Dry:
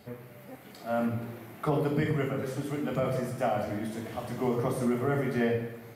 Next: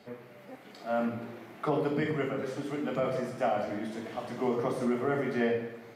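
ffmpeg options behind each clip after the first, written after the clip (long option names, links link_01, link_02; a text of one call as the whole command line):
ffmpeg -i in.wav -filter_complex "[0:a]acrossover=split=180 7200:gain=0.224 1 0.2[link_01][link_02][link_03];[link_01][link_02][link_03]amix=inputs=3:normalize=0" out.wav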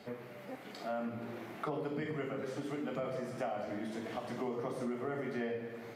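ffmpeg -i in.wav -af "acompressor=threshold=-40dB:ratio=3,volume=2dB" out.wav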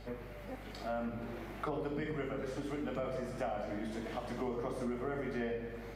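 ffmpeg -i in.wav -af "aeval=exprs='val(0)+0.00316*(sin(2*PI*50*n/s)+sin(2*PI*2*50*n/s)/2+sin(2*PI*3*50*n/s)/3+sin(2*PI*4*50*n/s)/4+sin(2*PI*5*50*n/s)/5)':channel_layout=same" out.wav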